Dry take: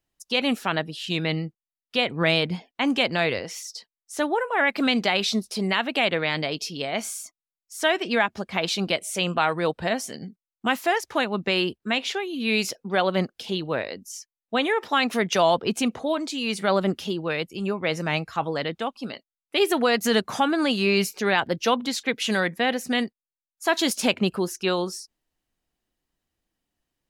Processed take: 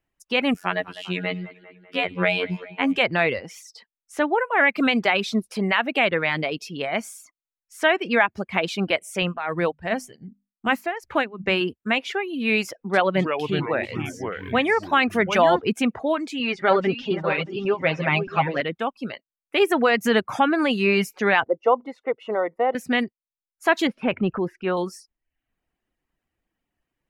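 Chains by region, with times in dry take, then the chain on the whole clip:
0.54–2.96 robotiser 90.4 Hz + split-band echo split 2400 Hz, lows 0.197 s, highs 0.105 s, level -13 dB
9.22–11.61 low shelf 74 Hz +12 dB + notches 50/100/150/200/250 Hz + tremolo 2.6 Hz, depth 74%
12.68–15.61 upward compressor, threshold -38 dBFS + echoes that change speed 0.255 s, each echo -4 st, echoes 3, each echo -6 dB
16.39–18.61 regenerating reverse delay 0.314 s, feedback 48%, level -8.5 dB + LPF 5300 Hz 24 dB/oct + comb 7.5 ms, depth 56%
21.44–22.75 polynomial smoothing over 65 samples + resonant low shelf 300 Hz -12.5 dB, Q 1.5
23.87–24.77 transient shaper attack -3 dB, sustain +5 dB + air absorption 430 m
whole clip: reverb removal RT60 0.56 s; resonant high shelf 3100 Hz -8 dB, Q 1.5; gain +2.5 dB

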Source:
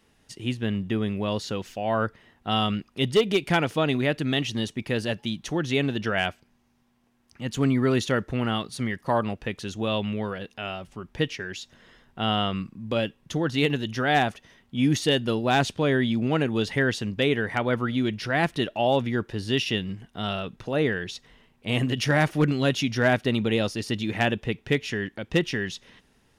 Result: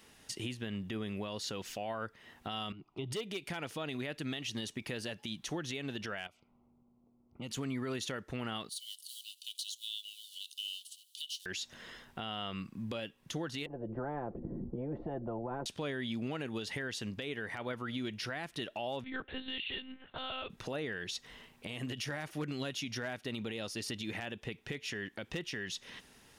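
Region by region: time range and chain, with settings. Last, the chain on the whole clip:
2.72–3.12 LPF 1800 Hz + compressor, threshold -28 dBFS + fixed phaser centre 340 Hz, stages 8
6.27–7.51 low-pass opened by the level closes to 440 Hz, open at -31 dBFS + compressor, threshold -40 dBFS + Butterworth band-stop 1700 Hz, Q 2.7
8.69–11.46 G.711 law mismatch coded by mu + rippled Chebyshev high-pass 2900 Hz, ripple 6 dB + de-esser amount 80%
13.66–15.66 ladder low-pass 340 Hz, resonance 30% + comb 5.8 ms, depth 47% + spectral compressor 10:1
19.04–20.5 low shelf 210 Hz -11.5 dB + monotone LPC vocoder at 8 kHz 260 Hz
whole clip: tilt +1.5 dB/oct; compressor 4:1, threshold -40 dBFS; limiter -32 dBFS; gain +3.5 dB

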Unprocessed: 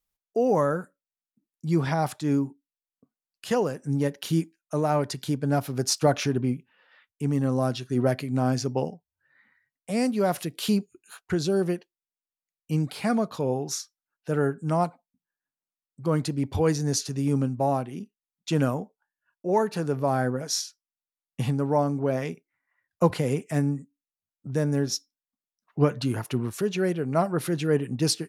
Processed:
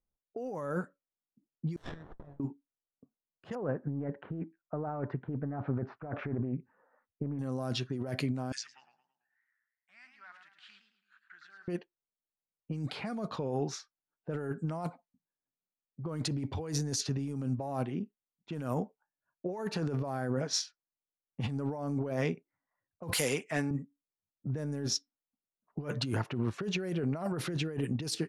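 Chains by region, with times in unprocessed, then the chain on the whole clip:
1.76–2.4 steep high-pass 1700 Hz 96 dB/oct + air absorption 85 m + running maximum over 17 samples
3.55–7.39 LPF 1600 Hz 24 dB/oct + Doppler distortion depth 0.31 ms
8.52–11.68 elliptic band-pass 1600–8500 Hz, stop band 50 dB + compressor 1.5:1, threshold -41 dBFS + warbling echo 0.11 s, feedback 48%, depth 138 cents, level -6.5 dB
23.13–23.71 tilt +4.5 dB/oct + hard clip -20 dBFS
whole clip: low-pass opened by the level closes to 650 Hz, open at -20 dBFS; negative-ratio compressor -30 dBFS, ratio -1; gain -4 dB

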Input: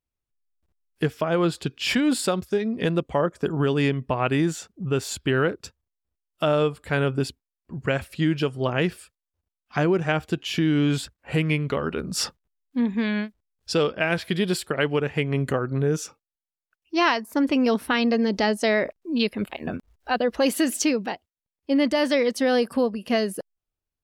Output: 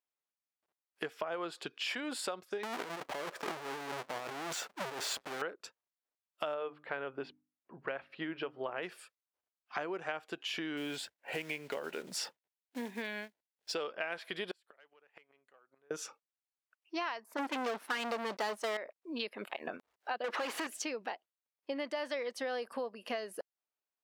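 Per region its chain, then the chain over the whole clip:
2.63–5.42 half-waves squared off + negative-ratio compressor -26 dBFS + Doppler distortion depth 0.69 ms
6.54–8.83 air absorption 310 m + notches 50/100/150/200/250/300 Hz
10.77–13.76 block floating point 5-bit + bell 1200 Hz -12 dB 0.32 oct
14.51–15.91 overdrive pedal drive 10 dB, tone 7300 Hz, clips at -9.5 dBFS + flipped gate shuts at -19 dBFS, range -38 dB
17.37–18.77 sample leveller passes 5 + gate -14 dBFS, range -11 dB
20.24–20.67 bell 640 Hz -8.5 dB 0.5 oct + overdrive pedal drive 37 dB, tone 2200 Hz, clips at -10.5 dBFS
whole clip: HPF 590 Hz 12 dB/oct; high shelf 3800 Hz -9.5 dB; compressor 4:1, threshold -36 dBFS

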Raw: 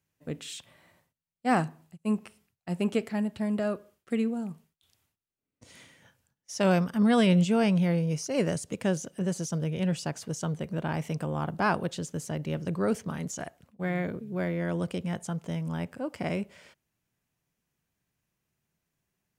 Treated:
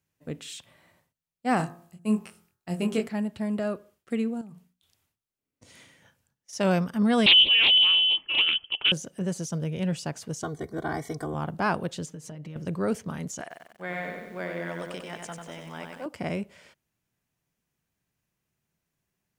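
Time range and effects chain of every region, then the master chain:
1.57–3.07 high shelf 5600 Hz +5.5 dB + doubler 23 ms -5 dB + de-hum 57.3 Hz, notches 33
4.41–6.53 notches 60/120/180/240 Hz + compressor 4:1, threshold -43 dBFS
7.26–8.92 low shelf 280 Hz +7.5 dB + inverted band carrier 3200 Hz + Doppler distortion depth 0.28 ms
10.43–11.34 Butterworth band-stop 2700 Hz, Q 2.5 + comb 2.7 ms, depth 100%
12.06–12.56 high shelf 7000 Hz -7 dB + comb 6.4 ms, depth 84% + compressor 16:1, threshold -36 dBFS
13.41–16.06 weighting filter A + lo-fi delay 94 ms, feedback 55%, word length 10-bit, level -4 dB
whole clip: dry

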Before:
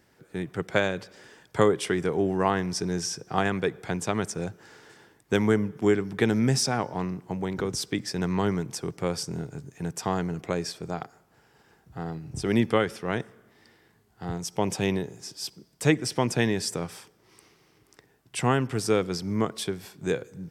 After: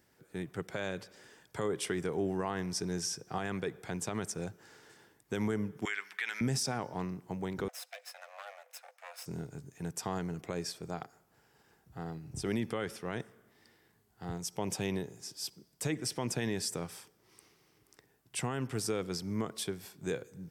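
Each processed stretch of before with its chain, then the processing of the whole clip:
5.85–6.41 HPF 1300 Hz + bell 2100 Hz +14.5 dB 1.8 oct
7.68–9.26 minimum comb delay 0.78 ms + rippled Chebyshev high-pass 490 Hz, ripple 9 dB
whole clip: high shelf 8100 Hz +8 dB; limiter -16 dBFS; gain -7 dB

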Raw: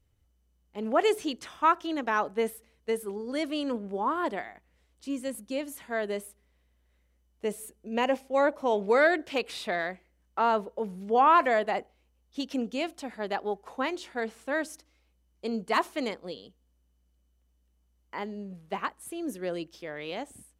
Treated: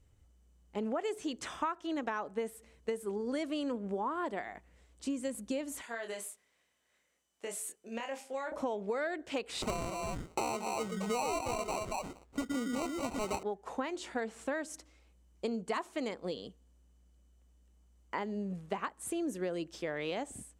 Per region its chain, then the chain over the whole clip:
5.81–8.52 HPF 1300 Hz 6 dB/oct + compressor, threshold -40 dBFS + doubler 26 ms -4.5 dB
9.62–13.43 delay with a stepping band-pass 0.115 s, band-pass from 290 Hz, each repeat 1.4 oct, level -3 dB + sample-rate reducer 1700 Hz
whole clip: high shelf 4000 Hz -10.5 dB; compressor 12:1, threshold -37 dBFS; bell 7700 Hz +11.5 dB 0.78 oct; gain +5 dB

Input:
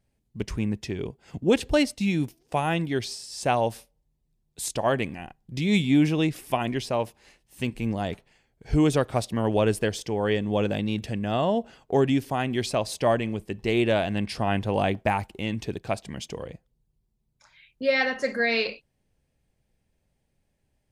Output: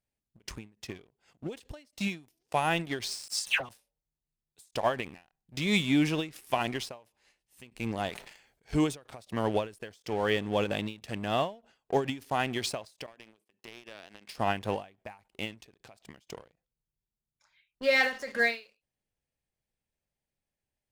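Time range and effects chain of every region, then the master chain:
3.28–3.69 comb 7.5 ms, depth 95% + transient shaper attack +12 dB, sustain -7 dB + dispersion lows, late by 0.143 s, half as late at 2000 Hz
8.09–8.75 low shelf 340 Hz -6.5 dB + sustainer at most 55 dB/s
13.06–14.38 gate -46 dBFS, range -12 dB + HPF 290 Hz + compressor 8:1, threshold -37 dBFS
whole clip: low shelf 490 Hz -8.5 dB; sample leveller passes 2; ending taper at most 180 dB/s; gain -6.5 dB

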